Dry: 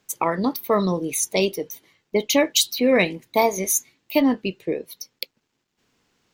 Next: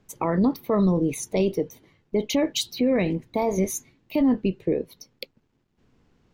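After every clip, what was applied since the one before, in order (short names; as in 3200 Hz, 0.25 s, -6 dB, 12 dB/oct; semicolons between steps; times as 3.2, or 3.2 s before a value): tilt -3.5 dB/oct; limiter -14 dBFS, peak gain reduction 10.5 dB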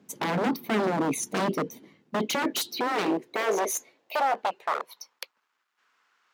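wavefolder -24 dBFS; high-pass sweep 220 Hz -> 1300 Hz, 2.12–5.59; gain +1.5 dB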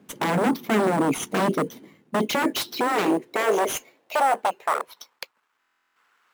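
in parallel at -3 dB: sample-rate reducer 9300 Hz, jitter 0%; on the sum: stuck buffer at 5.59, samples 1024, times 15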